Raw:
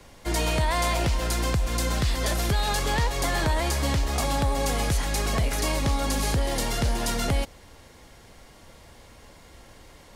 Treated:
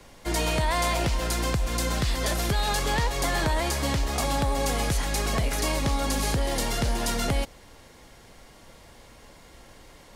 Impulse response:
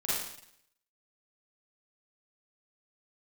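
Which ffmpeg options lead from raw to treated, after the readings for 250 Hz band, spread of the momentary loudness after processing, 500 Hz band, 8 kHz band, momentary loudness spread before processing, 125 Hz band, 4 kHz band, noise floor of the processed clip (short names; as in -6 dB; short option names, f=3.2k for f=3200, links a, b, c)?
0.0 dB, 2 LU, 0.0 dB, 0.0 dB, 2 LU, -2.0 dB, 0.0 dB, -51 dBFS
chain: -af "equalizer=f=78:t=o:w=0.77:g=-4.5"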